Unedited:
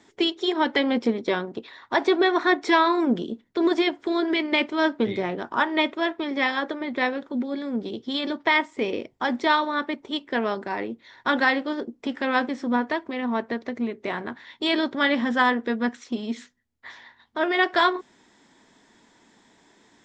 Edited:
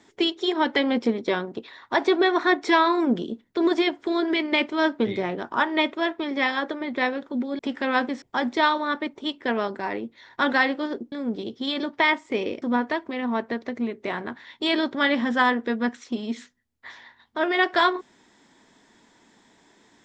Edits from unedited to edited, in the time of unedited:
0:07.59–0:09.09: swap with 0:11.99–0:12.62

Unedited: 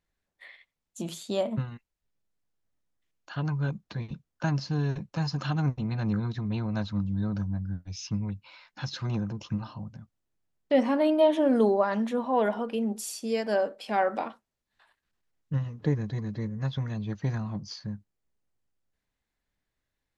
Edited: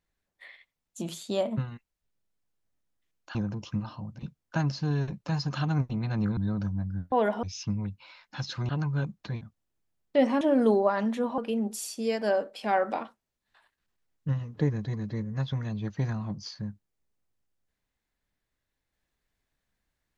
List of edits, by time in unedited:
0:03.35–0:04.07: swap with 0:09.13–0:09.97
0:06.25–0:07.12: remove
0:10.97–0:11.35: remove
0:12.32–0:12.63: move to 0:07.87

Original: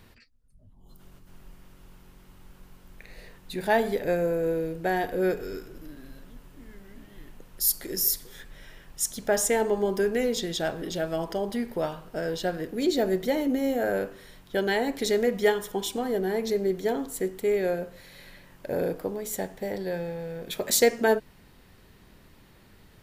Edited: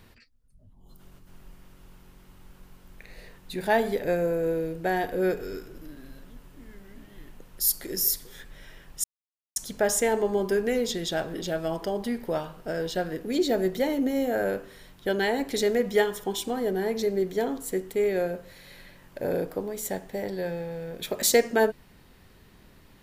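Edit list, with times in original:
0:09.04: splice in silence 0.52 s

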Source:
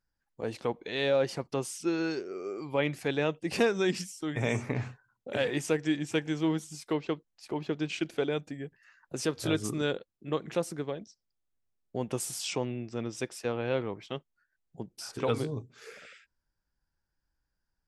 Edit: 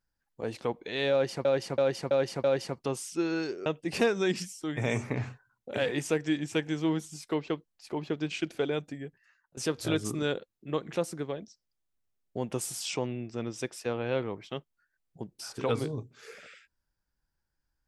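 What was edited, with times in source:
0:01.12–0:01.45: repeat, 5 plays
0:02.34–0:03.25: remove
0:08.57–0:09.16: fade out, to −22 dB

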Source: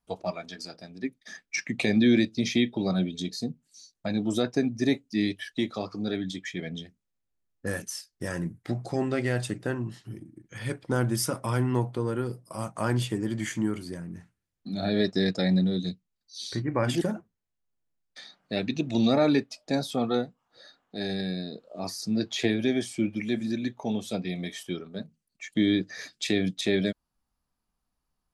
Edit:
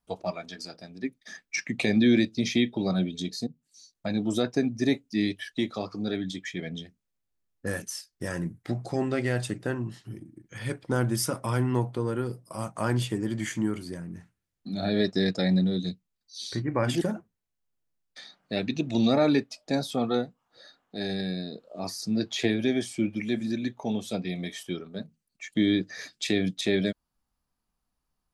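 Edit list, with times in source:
0:03.47–0:04.16: fade in equal-power, from −12.5 dB

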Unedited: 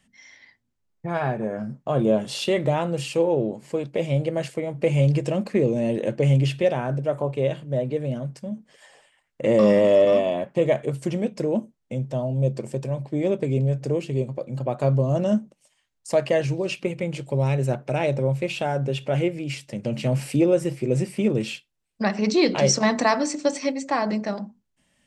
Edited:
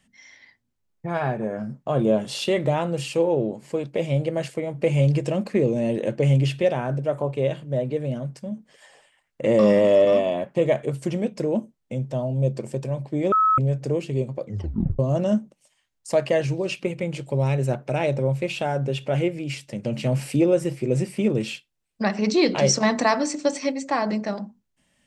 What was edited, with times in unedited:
0:13.32–0:13.58: beep over 1,290 Hz −15 dBFS
0:14.44: tape stop 0.55 s

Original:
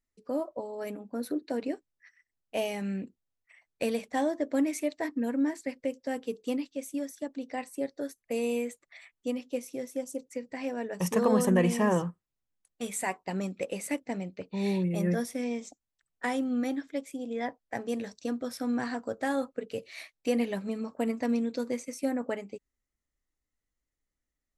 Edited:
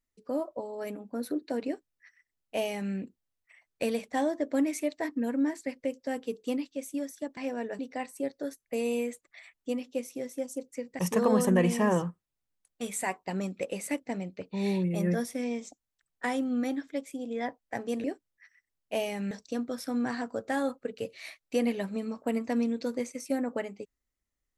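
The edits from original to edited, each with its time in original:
0:01.66–0:02.93: duplicate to 0:18.04
0:10.57–0:10.99: move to 0:07.37

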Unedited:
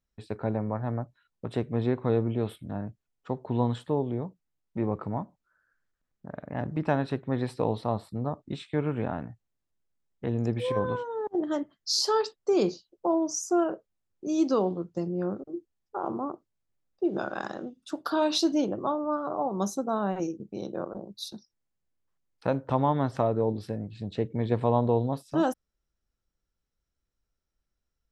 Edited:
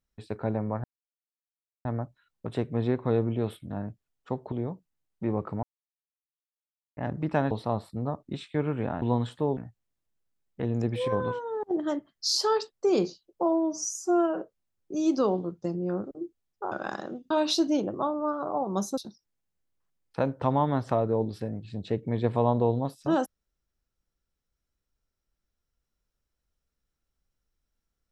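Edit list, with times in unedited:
0:00.84: splice in silence 1.01 s
0:03.51–0:04.06: move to 0:09.21
0:05.17–0:06.51: silence
0:07.05–0:07.70: remove
0:13.10–0:13.73: time-stretch 1.5×
0:16.04–0:17.23: remove
0:17.82–0:18.15: remove
0:19.82–0:21.25: remove

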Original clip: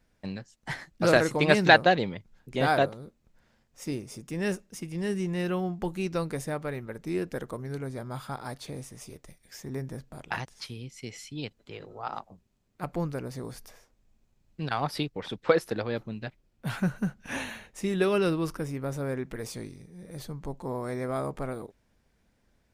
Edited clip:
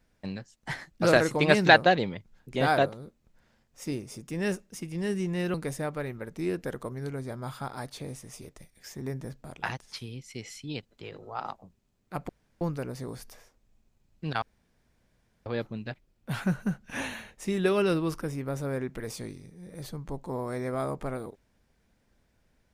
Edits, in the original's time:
0:05.54–0:06.22: remove
0:12.97: splice in room tone 0.32 s
0:14.78–0:15.82: fill with room tone

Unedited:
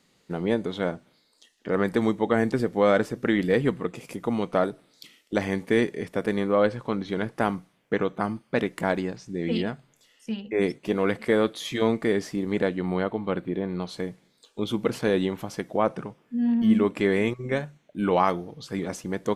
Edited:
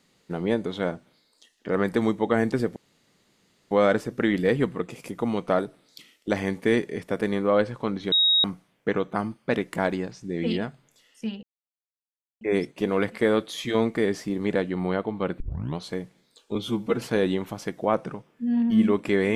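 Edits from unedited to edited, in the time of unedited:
0:02.76: splice in room tone 0.95 s
0:07.17–0:07.49: beep over 3,780 Hz −16.5 dBFS
0:10.48: splice in silence 0.98 s
0:13.47: tape start 0.38 s
0:14.62–0:14.93: time-stretch 1.5×

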